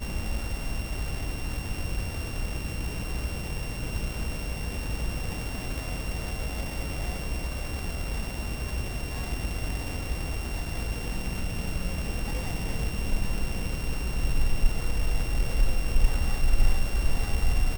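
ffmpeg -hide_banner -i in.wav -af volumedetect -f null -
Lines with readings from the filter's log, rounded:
mean_volume: -26.1 dB
max_volume: -9.3 dB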